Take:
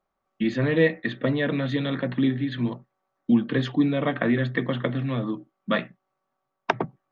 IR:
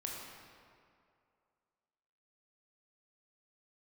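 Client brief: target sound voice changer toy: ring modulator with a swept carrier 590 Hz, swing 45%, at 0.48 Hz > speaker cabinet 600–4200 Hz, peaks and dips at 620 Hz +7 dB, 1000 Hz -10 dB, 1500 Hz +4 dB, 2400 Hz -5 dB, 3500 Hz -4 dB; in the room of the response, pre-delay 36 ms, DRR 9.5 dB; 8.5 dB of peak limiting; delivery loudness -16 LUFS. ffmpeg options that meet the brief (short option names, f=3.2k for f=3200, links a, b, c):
-filter_complex "[0:a]alimiter=limit=-15dB:level=0:latency=1,asplit=2[a][b];[1:a]atrim=start_sample=2205,adelay=36[c];[b][c]afir=irnorm=-1:irlink=0,volume=-10dB[d];[a][d]amix=inputs=2:normalize=0,aeval=exprs='val(0)*sin(2*PI*590*n/s+590*0.45/0.48*sin(2*PI*0.48*n/s))':c=same,highpass=600,equalizer=f=620:t=q:w=4:g=7,equalizer=f=1k:t=q:w=4:g=-10,equalizer=f=1.5k:t=q:w=4:g=4,equalizer=f=2.4k:t=q:w=4:g=-5,equalizer=f=3.5k:t=q:w=4:g=-4,lowpass=f=4.2k:w=0.5412,lowpass=f=4.2k:w=1.3066,volume=16dB"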